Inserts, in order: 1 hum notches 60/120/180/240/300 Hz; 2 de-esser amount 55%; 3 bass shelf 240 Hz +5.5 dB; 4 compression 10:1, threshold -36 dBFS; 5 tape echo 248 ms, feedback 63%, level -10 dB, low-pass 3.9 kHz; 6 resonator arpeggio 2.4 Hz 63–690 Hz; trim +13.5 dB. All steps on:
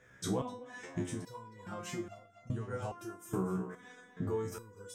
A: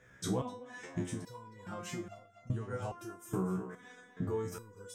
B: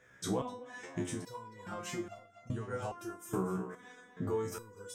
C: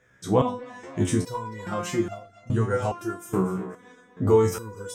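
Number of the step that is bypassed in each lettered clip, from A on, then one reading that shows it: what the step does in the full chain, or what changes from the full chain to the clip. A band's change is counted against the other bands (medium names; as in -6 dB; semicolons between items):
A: 1, momentary loudness spread change +1 LU; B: 3, 125 Hz band -3.0 dB; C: 4, mean gain reduction 11.5 dB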